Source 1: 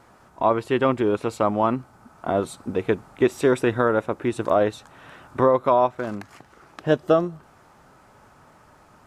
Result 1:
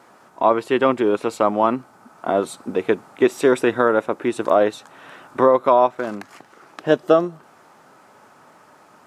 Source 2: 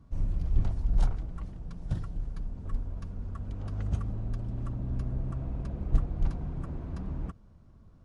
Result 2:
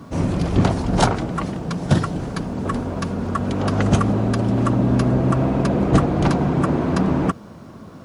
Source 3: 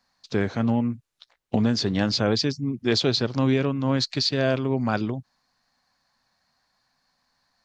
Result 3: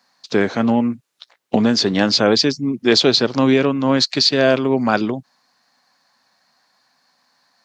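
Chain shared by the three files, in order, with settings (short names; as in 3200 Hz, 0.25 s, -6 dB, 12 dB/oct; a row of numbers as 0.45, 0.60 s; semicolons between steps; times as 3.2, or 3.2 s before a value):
HPF 220 Hz 12 dB/oct; normalise peaks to -1.5 dBFS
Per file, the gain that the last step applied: +3.5, +26.0, +9.0 dB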